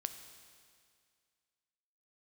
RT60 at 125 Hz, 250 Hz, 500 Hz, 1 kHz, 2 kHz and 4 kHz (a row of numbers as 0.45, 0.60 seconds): 2.1, 2.1, 2.1, 2.1, 2.1, 2.1 seconds